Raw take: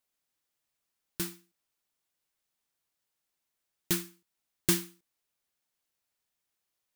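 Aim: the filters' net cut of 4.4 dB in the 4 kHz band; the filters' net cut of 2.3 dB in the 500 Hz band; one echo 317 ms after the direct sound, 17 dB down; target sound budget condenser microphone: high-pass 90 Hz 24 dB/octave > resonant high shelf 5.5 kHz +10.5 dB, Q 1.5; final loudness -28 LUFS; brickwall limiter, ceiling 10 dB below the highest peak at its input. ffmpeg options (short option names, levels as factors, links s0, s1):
-af "equalizer=f=500:t=o:g=-4.5,equalizer=f=4000:t=o:g=-7,alimiter=limit=0.0891:level=0:latency=1,highpass=f=90:w=0.5412,highpass=f=90:w=1.3066,highshelf=f=5500:t=q:w=1.5:g=10.5,aecho=1:1:317:0.141,volume=1.19"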